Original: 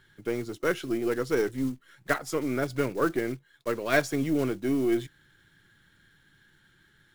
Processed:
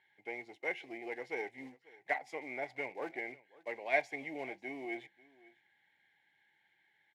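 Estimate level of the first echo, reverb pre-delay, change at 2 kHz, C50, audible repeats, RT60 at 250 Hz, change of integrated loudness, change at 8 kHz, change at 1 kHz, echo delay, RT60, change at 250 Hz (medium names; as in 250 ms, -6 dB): -22.0 dB, no reverb, -5.5 dB, no reverb, 1, no reverb, -11.0 dB, under -20 dB, -7.0 dB, 541 ms, no reverb, -19.5 dB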